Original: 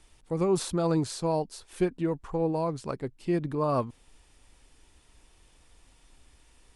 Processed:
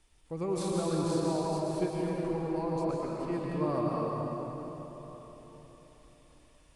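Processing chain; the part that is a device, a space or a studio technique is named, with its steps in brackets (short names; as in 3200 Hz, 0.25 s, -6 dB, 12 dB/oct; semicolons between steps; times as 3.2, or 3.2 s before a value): cathedral (reverb RT60 4.2 s, pre-delay 0.11 s, DRR -4.5 dB); gain -8 dB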